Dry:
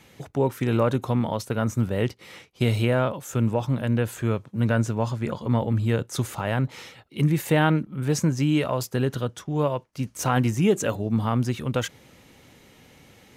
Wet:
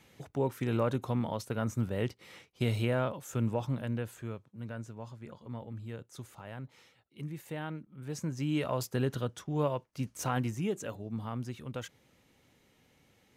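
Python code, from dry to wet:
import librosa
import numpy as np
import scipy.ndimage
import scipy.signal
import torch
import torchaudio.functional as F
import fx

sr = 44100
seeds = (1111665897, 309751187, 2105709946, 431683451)

y = fx.gain(x, sr, db=fx.line((3.67, -8.0), (4.6, -19.0), (7.86, -19.0), (8.74, -6.5), (10.03, -6.5), (10.8, -14.0)))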